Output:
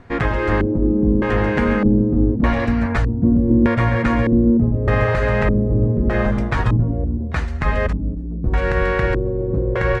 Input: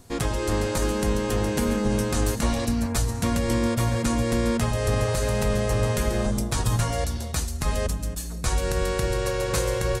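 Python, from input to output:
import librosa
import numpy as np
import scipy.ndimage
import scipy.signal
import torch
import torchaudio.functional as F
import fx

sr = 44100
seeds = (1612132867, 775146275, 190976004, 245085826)

y = fx.filter_lfo_lowpass(x, sr, shape='square', hz=0.82, low_hz=300.0, high_hz=1900.0, q=2.3)
y = y * 10.0 ** (6.0 / 20.0)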